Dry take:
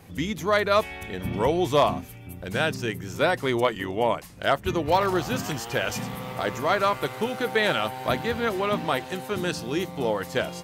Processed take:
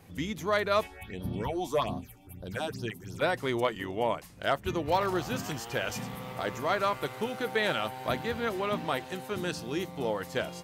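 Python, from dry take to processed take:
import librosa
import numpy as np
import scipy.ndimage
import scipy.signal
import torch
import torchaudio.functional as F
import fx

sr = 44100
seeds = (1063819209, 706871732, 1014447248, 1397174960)

y = fx.phaser_stages(x, sr, stages=6, low_hz=110.0, high_hz=2300.0, hz=fx.line((0.86, 0.94), (3.21, 3.7)), feedback_pct=25, at=(0.86, 3.21), fade=0.02)
y = y * 10.0 ** (-5.5 / 20.0)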